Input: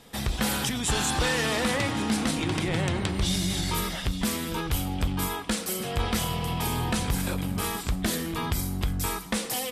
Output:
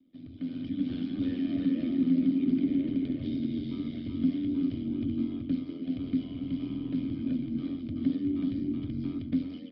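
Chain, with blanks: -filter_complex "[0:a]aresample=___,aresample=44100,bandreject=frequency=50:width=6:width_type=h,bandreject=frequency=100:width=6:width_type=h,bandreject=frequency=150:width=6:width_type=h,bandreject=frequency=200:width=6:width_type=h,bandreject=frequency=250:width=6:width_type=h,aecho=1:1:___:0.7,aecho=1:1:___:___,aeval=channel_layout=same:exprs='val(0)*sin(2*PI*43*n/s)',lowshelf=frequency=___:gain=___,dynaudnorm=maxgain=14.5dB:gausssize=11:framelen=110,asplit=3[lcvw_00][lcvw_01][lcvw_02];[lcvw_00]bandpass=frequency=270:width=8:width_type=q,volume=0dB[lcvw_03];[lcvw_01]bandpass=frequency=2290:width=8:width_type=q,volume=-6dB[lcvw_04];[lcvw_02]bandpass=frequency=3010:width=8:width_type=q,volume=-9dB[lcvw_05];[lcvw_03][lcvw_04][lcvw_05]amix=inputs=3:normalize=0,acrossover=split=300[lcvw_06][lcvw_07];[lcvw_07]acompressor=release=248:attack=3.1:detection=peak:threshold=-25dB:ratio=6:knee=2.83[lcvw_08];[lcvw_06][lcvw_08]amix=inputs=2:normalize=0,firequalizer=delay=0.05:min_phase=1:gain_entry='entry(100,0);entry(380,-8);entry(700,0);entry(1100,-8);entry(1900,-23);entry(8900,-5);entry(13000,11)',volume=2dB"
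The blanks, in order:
11025, 3.3, 378, 0.668, 440, 4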